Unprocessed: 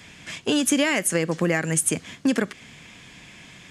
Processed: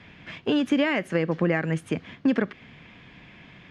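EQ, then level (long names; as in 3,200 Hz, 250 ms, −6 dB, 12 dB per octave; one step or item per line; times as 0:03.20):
high-frequency loss of the air 320 metres
0.0 dB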